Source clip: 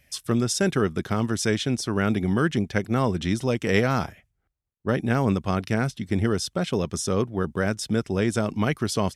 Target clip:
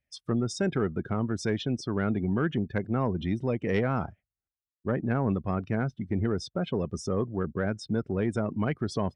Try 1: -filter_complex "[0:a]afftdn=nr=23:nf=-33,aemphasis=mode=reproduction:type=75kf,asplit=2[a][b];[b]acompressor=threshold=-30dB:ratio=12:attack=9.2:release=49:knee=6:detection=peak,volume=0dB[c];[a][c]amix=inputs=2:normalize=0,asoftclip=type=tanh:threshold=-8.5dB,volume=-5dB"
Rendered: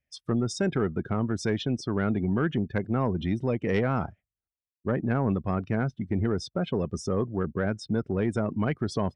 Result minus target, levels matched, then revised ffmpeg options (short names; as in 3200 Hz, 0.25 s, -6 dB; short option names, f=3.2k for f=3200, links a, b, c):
compressor: peak gain reduction -7.5 dB
-filter_complex "[0:a]afftdn=nr=23:nf=-33,aemphasis=mode=reproduction:type=75kf,asplit=2[a][b];[b]acompressor=threshold=-38dB:ratio=12:attack=9.2:release=49:knee=6:detection=peak,volume=0dB[c];[a][c]amix=inputs=2:normalize=0,asoftclip=type=tanh:threshold=-8.5dB,volume=-5dB"